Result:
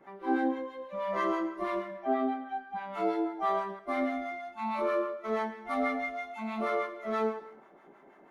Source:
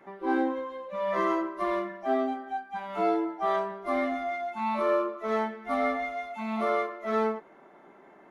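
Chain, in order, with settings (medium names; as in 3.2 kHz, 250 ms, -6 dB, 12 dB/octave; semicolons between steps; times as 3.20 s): 1.98–2.92 s: low-pass 2.8 kHz -> 5 kHz 12 dB/octave; 3.79–5.40 s: expander -31 dBFS; harmonic tremolo 6.2 Hz, depth 70%, crossover 800 Hz; gated-style reverb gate 320 ms falling, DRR 9.5 dB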